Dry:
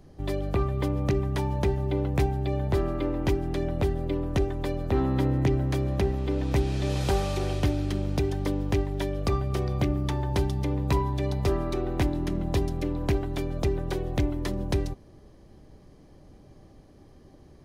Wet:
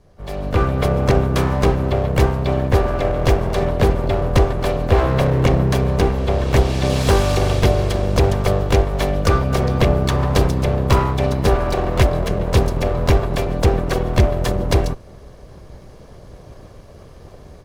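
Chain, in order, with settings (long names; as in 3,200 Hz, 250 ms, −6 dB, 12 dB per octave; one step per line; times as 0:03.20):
lower of the sound and its delayed copy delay 1.8 ms
pitch-shifted copies added +4 semitones −10 dB
automatic gain control gain up to 13 dB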